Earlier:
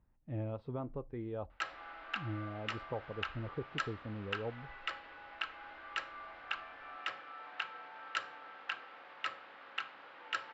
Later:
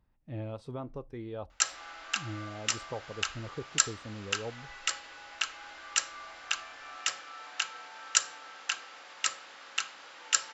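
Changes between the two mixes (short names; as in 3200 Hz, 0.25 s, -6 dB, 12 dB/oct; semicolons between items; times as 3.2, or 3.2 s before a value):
background: add high shelf 6800 Hz +5.5 dB; master: remove air absorption 440 m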